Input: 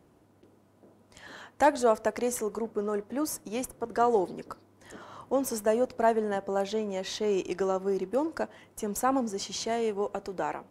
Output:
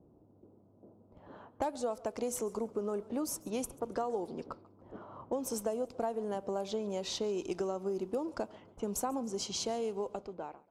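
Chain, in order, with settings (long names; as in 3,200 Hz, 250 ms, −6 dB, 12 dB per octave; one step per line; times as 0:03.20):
fade-out on the ending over 0.87 s
parametric band 1,800 Hz −11.5 dB 0.62 octaves
downward compressor 8 to 1, threshold −31 dBFS, peak gain reduction 13.5 dB
low-pass that shuts in the quiet parts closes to 570 Hz, open at −32.5 dBFS
feedback echo with a swinging delay time 141 ms, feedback 36%, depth 97 cents, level −22.5 dB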